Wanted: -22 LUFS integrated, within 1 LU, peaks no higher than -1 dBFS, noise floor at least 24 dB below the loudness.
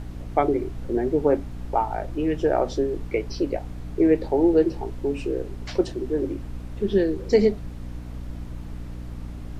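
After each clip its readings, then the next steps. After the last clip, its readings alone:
hum 60 Hz; harmonics up to 300 Hz; hum level -34 dBFS; noise floor -36 dBFS; noise floor target -49 dBFS; loudness -24.5 LUFS; peak -6.0 dBFS; loudness target -22.0 LUFS
-> de-hum 60 Hz, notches 5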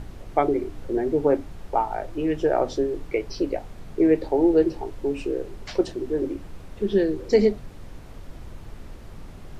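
hum none; noise floor -42 dBFS; noise floor target -49 dBFS
-> noise print and reduce 7 dB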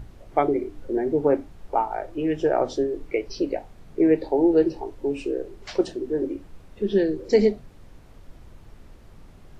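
noise floor -49 dBFS; loudness -24.5 LUFS; peak -6.5 dBFS; loudness target -22.0 LUFS
-> gain +2.5 dB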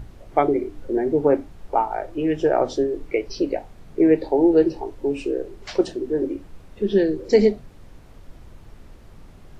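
loudness -22.0 LUFS; peak -4.0 dBFS; noise floor -46 dBFS

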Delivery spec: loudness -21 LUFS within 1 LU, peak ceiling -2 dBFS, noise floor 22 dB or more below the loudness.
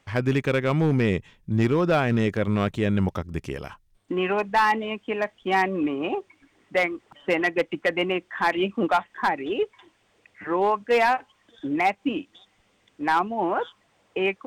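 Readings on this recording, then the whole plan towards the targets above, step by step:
clipped 0.9%; flat tops at -14.0 dBFS; loudness -24.5 LUFS; peak -14.0 dBFS; loudness target -21.0 LUFS
-> clip repair -14 dBFS; gain +3.5 dB

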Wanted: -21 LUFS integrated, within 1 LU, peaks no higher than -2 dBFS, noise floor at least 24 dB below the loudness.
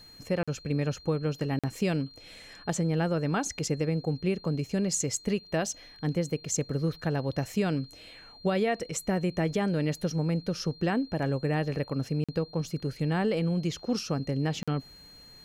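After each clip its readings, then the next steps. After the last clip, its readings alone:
dropouts 4; longest dropout 46 ms; steady tone 4200 Hz; tone level -50 dBFS; loudness -30.0 LUFS; peak -16.5 dBFS; loudness target -21.0 LUFS
-> interpolate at 0.43/1.59/12.24/14.63, 46 ms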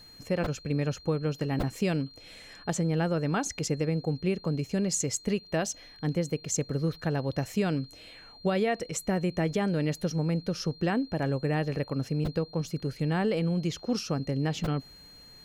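dropouts 0; steady tone 4200 Hz; tone level -50 dBFS
-> notch 4200 Hz, Q 30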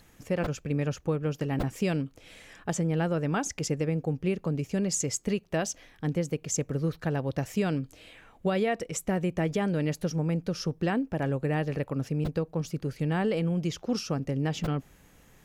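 steady tone none; loudness -30.0 LUFS; peak -16.5 dBFS; loudness target -21.0 LUFS
-> gain +9 dB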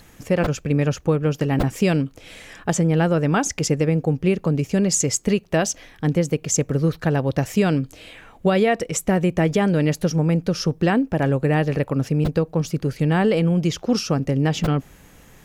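loudness -21.0 LUFS; peak -7.5 dBFS; noise floor -49 dBFS

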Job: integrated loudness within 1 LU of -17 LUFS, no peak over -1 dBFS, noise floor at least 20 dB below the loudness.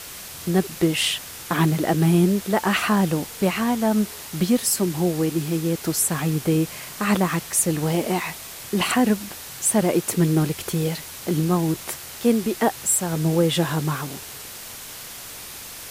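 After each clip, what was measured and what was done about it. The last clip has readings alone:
noise floor -38 dBFS; noise floor target -42 dBFS; loudness -22.0 LUFS; peak -7.5 dBFS; loudness target -17.0 LUFS
-> denoiser 6 dB, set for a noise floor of -38 dBFS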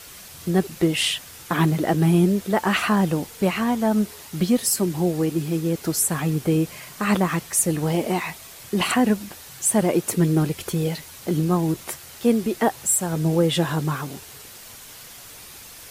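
noise floor -43 dBFS; loudness -22.5 LUFS; peak -7.5 dBFS; loudness target -17.0 LUFS
-> gain +5.5 dB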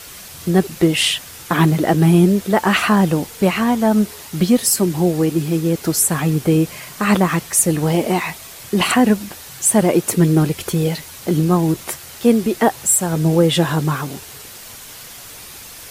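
loudness -17.0 LUFS; peak -2.0 dBFS; noise floor -37 dBFS

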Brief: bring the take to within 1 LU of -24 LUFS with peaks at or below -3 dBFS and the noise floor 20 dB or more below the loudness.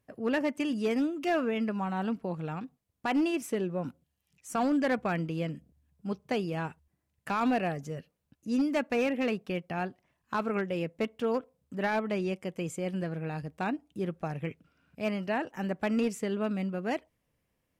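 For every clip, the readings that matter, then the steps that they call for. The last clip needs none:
clipped 0.8%; flat tops at -22.0 dBFS; loudness -32.0 LUFS; peak -22.0 dBFS; loudness target -24.0 LUFS
-> clip repair -22 dBFS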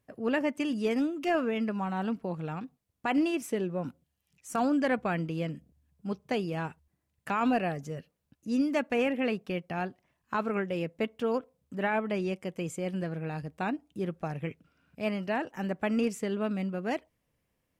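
clipped 0.0%; loudness -32.0 LUFS; peak -17.0 dBFS; loudness target -24.0 LUFS
-> gain +8 dB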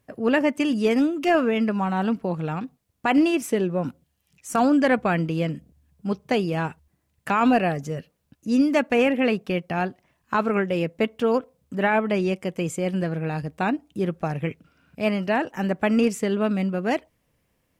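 loudness -24.0 LUFS; peak -9.0 dBFS; noise floor -72 dBFS

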